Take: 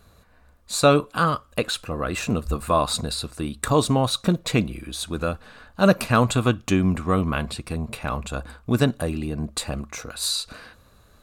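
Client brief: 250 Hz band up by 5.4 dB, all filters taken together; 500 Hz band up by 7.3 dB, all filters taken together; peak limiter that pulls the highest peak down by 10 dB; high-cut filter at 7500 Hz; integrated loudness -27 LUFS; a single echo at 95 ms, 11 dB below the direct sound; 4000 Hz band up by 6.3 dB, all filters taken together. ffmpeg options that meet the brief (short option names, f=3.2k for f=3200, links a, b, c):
-af "lowpass=7.5k,equalizer=f=250:t=o:g=5,equalizer=f=500:t=o:g=7.5,equalizer=f=4k:t=o:g=7,alimiter=limit=-8dB:level=0:latency=1,aecho=1:1:95:0.282,volume=-5.5dB"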